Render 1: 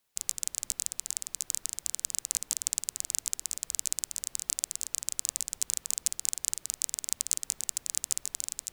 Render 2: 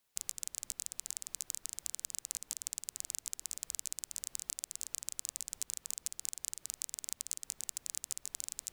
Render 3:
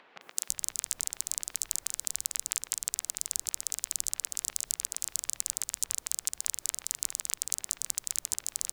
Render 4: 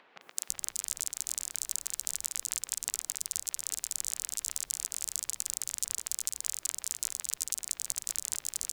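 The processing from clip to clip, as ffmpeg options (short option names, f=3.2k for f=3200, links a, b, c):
-af "acompressor=threshold=-32dB:ratio=6,volume=-1.5dB"
-filter_complex "[0:a]acrossover=split=220|2700[a][b][c];[c]adelay=210[d];[a]adelay=330[e];[e][b][d]amix=inputs=3:normalize=0,acompressor=mode=upward:threshold=-51dB:ratio=2.5,volume=8dB"
-af "aecho=1:1:379:0.596,volume=-2.5dB"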